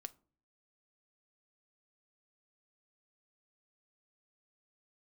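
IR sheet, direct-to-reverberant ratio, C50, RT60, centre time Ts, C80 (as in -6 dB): 10.0 dB, 22.0 dB, 0.45 s, 3 ms, 28.0 dB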